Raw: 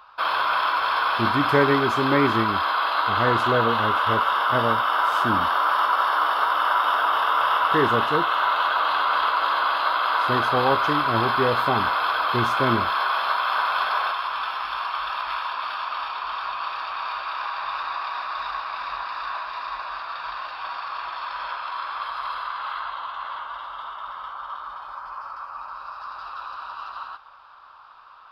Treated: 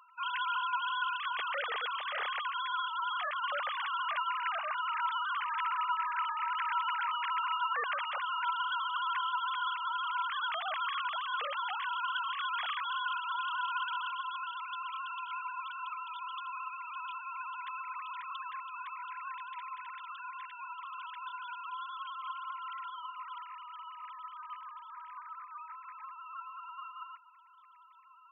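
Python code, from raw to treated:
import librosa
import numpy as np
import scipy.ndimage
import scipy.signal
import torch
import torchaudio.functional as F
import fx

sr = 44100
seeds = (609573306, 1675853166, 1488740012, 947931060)

y = fx.sine_speech(x, sr)
y = np.diff(y, prepend=0.0)
y = F.gain(torch.from_numpy(y), 2.5).numpy()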